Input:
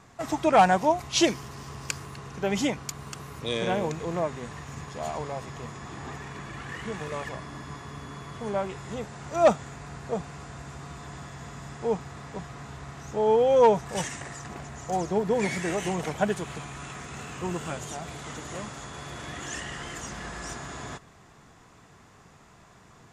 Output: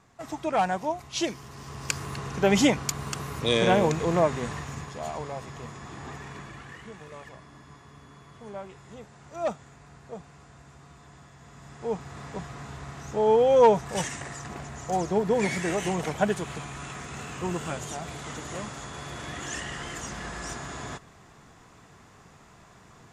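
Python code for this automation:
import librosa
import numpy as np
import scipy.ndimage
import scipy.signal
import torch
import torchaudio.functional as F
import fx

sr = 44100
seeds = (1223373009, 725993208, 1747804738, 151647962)

y = fx.gain(x, sr, db=fx.line((1.29, -6.5), (2.12, 6.0), (4.5, 6.0), (5.01, -1.5), (6.36, -1.5), (6.95, -10.0), (11.39, -10.0), (12.22, 1.0)))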